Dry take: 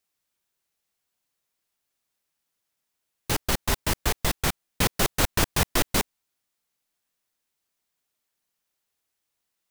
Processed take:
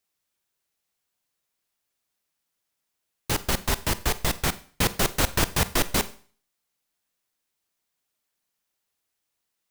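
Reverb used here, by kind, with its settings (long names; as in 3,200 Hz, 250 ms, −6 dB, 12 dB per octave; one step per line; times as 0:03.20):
four-comb reverb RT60 0.44 s, combs from 32 ms, DRR 15 dB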